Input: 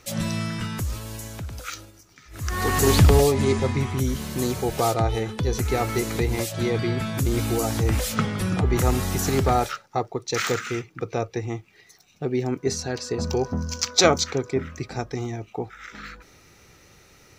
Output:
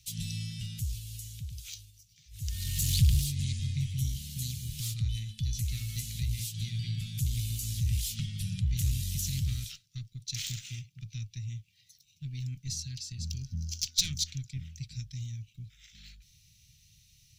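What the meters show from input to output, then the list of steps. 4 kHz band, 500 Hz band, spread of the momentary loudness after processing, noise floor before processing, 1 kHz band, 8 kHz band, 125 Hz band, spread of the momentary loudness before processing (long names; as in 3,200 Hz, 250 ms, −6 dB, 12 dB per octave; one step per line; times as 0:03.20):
−6.0 dB, below −40 dB, 14 LU, −55 dBFS, below −40 dB, −6.5 dB, −6.0 dB, 15 LU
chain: harmonic generator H 5 −21 dB, 6 −20 dB, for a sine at −2.5 dBFS
elliptic band-stop filter 140–3,100 Hz, stop band 80 dB
level −8 dB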